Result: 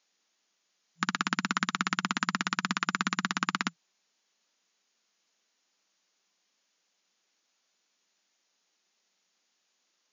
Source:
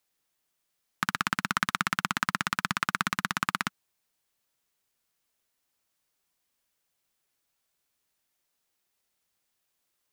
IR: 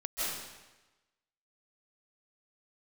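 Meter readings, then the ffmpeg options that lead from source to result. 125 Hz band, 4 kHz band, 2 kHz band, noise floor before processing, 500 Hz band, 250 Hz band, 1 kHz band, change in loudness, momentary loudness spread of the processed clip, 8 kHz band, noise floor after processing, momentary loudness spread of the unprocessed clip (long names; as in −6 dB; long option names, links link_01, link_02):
−0.5 dB, 0.0 dB, −1.5 dB, −79 dBFS, −1.0 dB, +3.0 dB, −2.0 dB, −1.0 dB, 4 LU, −0.5 dB, −77 dBFS, 4 LU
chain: -filter_complex "[0:a]afftfilt=real='re*between(b*sr/4096,170,7100)':imag='im*between(b*sr/4096,170,7100)':win_size=4096:overlap=0.75,highshelf=frequency=3500:gain=6.5,acrossover=split=330[link_01][link_02];[link_02]alimiter=limit=-14.5dB:level=0:latency=1:release=11[link_03];[link_01][link_03]amix=inputs=2:normalize=0,volume=4dB"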